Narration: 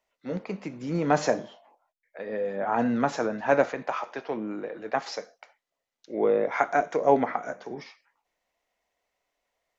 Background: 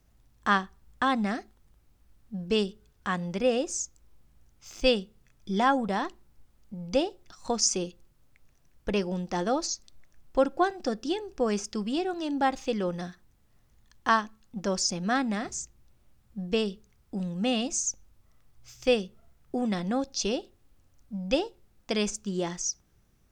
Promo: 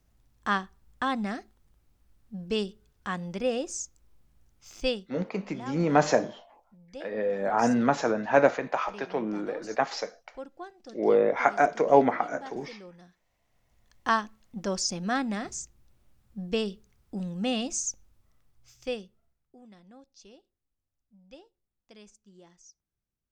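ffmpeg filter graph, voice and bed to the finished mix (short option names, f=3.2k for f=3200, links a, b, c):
-filter_complex "[0:a]adelay=4850,volume=1.5dB[a];[1:a]volume=13dB,afade=t=out:st=4.79:d=0.36:silence=0.188365,afade=t=in:st=13.25:d=0.82:silence=0.158489,afade=t=out:st=17.81:d=1.73:silence=0.0749894[b];[a][b]amix=inputs=2:normalize=0"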